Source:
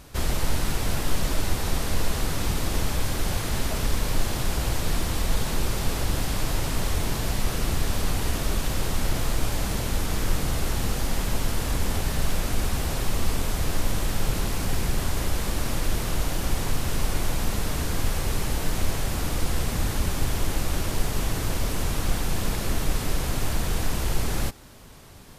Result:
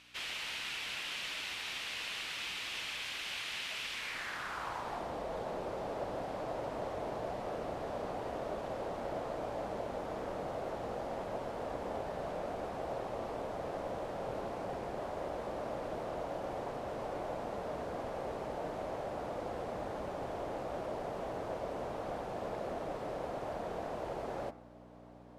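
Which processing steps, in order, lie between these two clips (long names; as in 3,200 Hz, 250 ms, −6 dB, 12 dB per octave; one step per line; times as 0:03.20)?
hum removal 83.79 Hz, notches 34
mains hum 60 Hz, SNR 15 dB
band-pass filter sweep 2,700 Hz → 620 Hz, 0:03.92–0:05.16
level +1.5 dB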